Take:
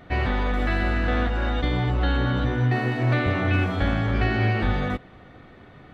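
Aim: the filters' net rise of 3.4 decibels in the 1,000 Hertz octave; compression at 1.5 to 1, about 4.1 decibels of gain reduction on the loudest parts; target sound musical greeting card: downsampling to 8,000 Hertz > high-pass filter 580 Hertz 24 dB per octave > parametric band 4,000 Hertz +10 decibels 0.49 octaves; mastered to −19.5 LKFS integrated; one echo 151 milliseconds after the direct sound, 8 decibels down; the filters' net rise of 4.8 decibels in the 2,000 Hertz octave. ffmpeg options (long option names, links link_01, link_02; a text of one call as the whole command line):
ffmpeg -i in.wav -af "equalizer=frequency=1000:width_type=o:gain=4,equalizer=frequency=2000:width_type=o:gain=4,acompressor=threshold=-28dB:ratio=1.5,aecho=1:1:151:0.398,aresample=8000,aresample=44100,highpass=frequency=580:width=0.5412,highpass=frequency=580:width=1.3066,equalizer=frequency=4000:width_type=o:width=0.49:gain=10,volume=9dB" out.wav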